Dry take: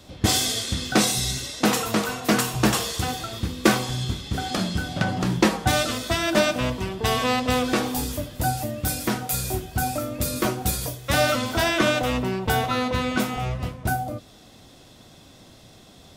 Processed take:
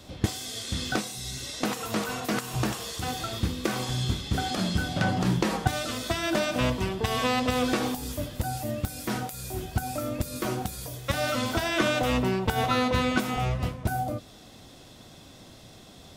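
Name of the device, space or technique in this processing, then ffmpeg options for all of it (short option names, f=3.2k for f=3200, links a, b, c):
de-esser from a sidechain: -filter_complex "[0:a]asplit=2[a][b];[b]highpass=f=5.8k:w=0.5412,highpass=f=5.8k:w=1.3066,apad=whole_len=712895[c];[a][c]sidechaincompress=threshold=-38dB:ratio=8:attack=3.4:release=74"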